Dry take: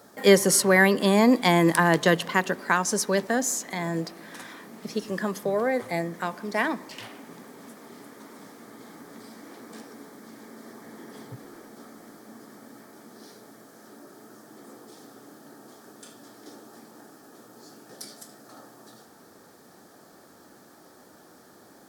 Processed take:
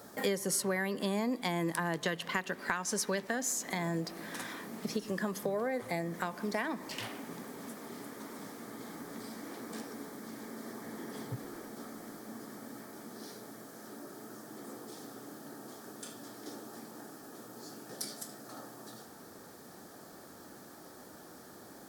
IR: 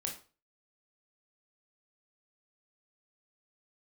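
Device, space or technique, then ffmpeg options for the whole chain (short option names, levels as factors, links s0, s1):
ASMR close-microphone chain: -filter_complex "[0:a]asettb=1/sr,asplit=3[s0][s1][s2];[s0]atrim=end=2.044[s3];[s1]atrim=start=2.04:end=3.53,asetpts=PTS-STARTPTS,afade=t=in:d=0.004:c=qsin,afade=t=out:st=1.486:d=0.004:c=qsin,equalizer=f=2400:t=o:w=2.1:g=5.5[s4];[s2]atrim=start=3.526[s5];[s3][s4]acrossfade=d=0.004:c1=hsin:c2=qsin[s6];[s6][s5]acrossfade=d=0.004:c1=qsin:c2=hsin,lowshelf=f=120:g=5,acompressor=threshold=0.0282:ratio=6,highshelf=f=9300:g=4"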